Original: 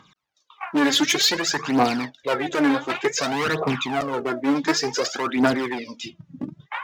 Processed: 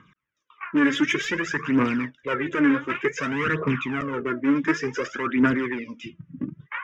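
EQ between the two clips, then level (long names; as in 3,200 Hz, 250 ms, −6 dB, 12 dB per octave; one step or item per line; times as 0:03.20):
high-frequency loss of the air 150 metres
phaser with its sweep stopped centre 1,800 Hz, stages 4
+2.5 dB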